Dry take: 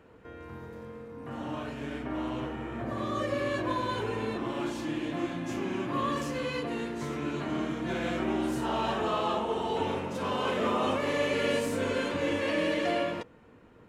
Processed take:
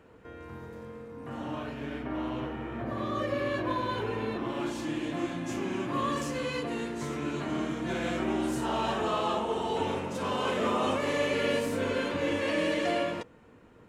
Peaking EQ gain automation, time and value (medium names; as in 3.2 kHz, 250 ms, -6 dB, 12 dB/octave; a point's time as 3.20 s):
peaking EQ 7.9 kHz 0.93 oct
1.28 s +2.5 dB
1.78 s -7.5 dB
4.34 s -7.5 dB
4.86 s +4.5 dB
11.07 s +4.5 dB
11.57 s -3 dB
12.10 s -3 dB
12.59 s +4 dB